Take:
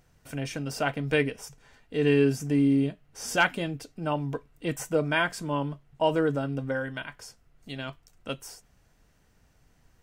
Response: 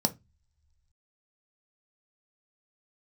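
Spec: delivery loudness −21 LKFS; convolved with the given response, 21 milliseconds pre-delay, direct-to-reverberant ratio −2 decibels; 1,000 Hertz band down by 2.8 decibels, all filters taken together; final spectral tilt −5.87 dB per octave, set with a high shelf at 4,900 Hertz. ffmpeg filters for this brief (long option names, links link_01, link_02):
-filter_complex "[0:a]equalizer=frequency=1000:width_type=o:gain=-4,highshelf=frequency=4900:gain=6.5,asplit=2[link_01][link_02];[1:a]atrim=start_sample=2205,adelay=21[link_03];[link_02][link_03]afir=irnorm=-1:irlink=0,volume=-5.5dB[link_04];[link_01][link_04]amix=inputs=2:normalize=0,volume=-0.5dB"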